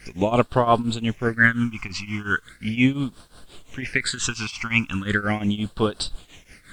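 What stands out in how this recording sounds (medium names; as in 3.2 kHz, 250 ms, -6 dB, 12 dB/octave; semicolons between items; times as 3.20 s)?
tremolo triangle 5.7 Hz, depth 90%; phasing stages 8, 0.38 Hz, lowest notch 490–2100 Hz; a quantiser's noise floor 12-bit, dither none; MP3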